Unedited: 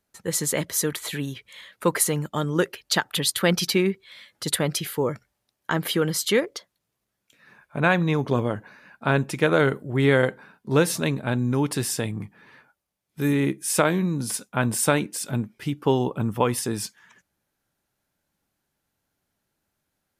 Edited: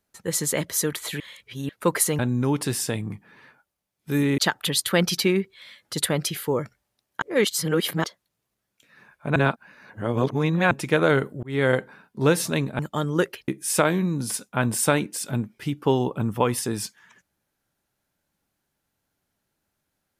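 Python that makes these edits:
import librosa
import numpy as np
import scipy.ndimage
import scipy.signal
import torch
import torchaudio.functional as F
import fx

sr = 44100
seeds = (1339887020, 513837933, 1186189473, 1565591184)

y = fx.edit(x, sr, fx.reverse_span(start_s=1.2, length_s=0.49),
    fx.swap(start_s=2.19, length_s=0.69, other_s=11.29, other_length_s=2.19),
    fx.reverse_span(start_s=5.72, length_s=0.82),
    fx.reverse_span(start_s=7.86, length_s=1.35),
    fx.fade_in_span(start_s=9.93, length_s=0.28), tone=tone)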